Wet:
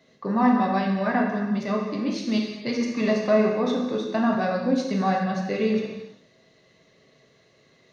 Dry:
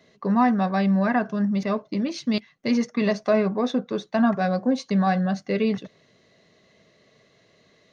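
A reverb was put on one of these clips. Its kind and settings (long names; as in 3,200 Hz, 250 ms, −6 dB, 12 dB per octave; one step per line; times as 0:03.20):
reverb whose tail is shaped and stops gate 430 ms falling, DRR −0.5 dB
level −3 dB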